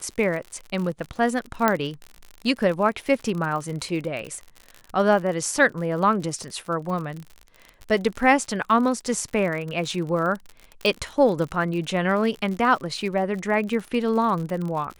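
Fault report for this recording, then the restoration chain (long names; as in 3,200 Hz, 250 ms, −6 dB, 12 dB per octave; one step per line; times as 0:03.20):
surface crackle 58 per second −30 dBFS
0:01.68: click −5 dBFS
0:10.86: click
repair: click removal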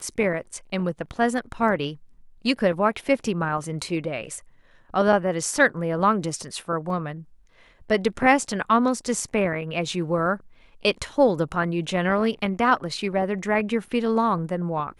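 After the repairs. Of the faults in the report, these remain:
0:01.68: click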